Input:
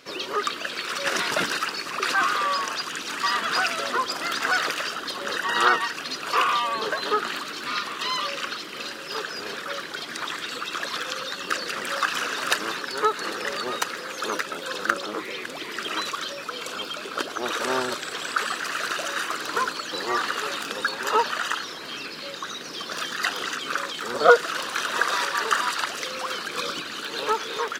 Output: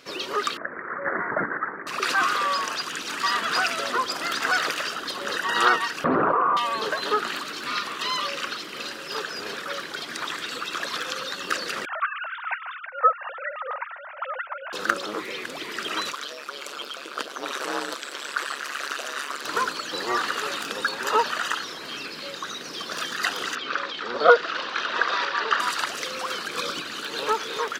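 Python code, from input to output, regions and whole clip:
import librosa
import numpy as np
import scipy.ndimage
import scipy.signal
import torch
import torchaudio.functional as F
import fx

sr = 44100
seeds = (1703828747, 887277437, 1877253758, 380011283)

y = fx.chain(x, sr, fx.steep_lowpass(hz=2000.0, slope=96),
    fx.resample_bad(factor=8, down='none', up='filtered'), at=(0.57, 1.87))
y = fx.chain(y, sr, fx.lowpass(hz=1200.0, slope=24),
    fx.env_flatten(amount_pct=100), at=(6.04, 6.57))
y = fx.chain(y, sr, fx.sine_speech(),
    fx.lowpass(hz=2000.0, slope=12),
    fx.low_shelf(hz=260.0, db=-7.0), at=(11.85, 14.73))
y = fx.chain(y, sr, fx.highpass(hz=340.0, slope=24),
    fx.peak_eq(hz=720.0, db=-3.0, octaves=0.41),
    fx.ring_mod(carrier_hz=71.0), at=(16.12, 19.45))
y = fx.chain(y, sr, fx.lowpass(hz=4700.0, slope=24),
    fx.peak_eq(hz=110.0, db=-7.5, octaves=1.5), at=(23.55, 25.6))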